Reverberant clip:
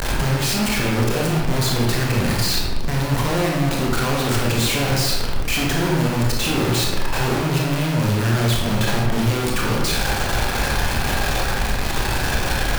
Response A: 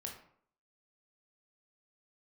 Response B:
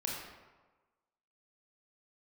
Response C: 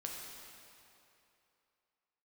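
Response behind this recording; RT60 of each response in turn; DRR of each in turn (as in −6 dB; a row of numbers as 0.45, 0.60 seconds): B; 0.60, 1.3, 2.8 seconds; 0.5, −3.0, −1.5 decibels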